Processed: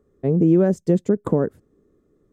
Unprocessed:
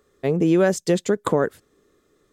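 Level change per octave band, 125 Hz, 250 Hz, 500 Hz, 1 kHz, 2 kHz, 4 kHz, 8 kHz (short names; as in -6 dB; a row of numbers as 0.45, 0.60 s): +5.0 dB, +3.0 dB, -0.5 dB, -6.5 dB, -11.5 dB, under -15 dB, under -10 dB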